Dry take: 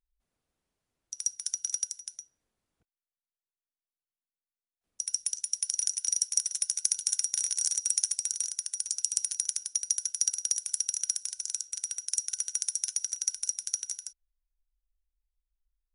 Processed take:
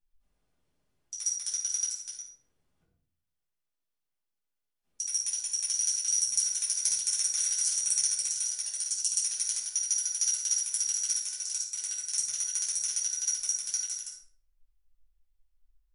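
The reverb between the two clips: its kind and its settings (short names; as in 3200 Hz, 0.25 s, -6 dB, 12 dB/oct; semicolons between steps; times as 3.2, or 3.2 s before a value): shoebox room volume 780 m³, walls furnished, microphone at 8.7 m; gain -7 dB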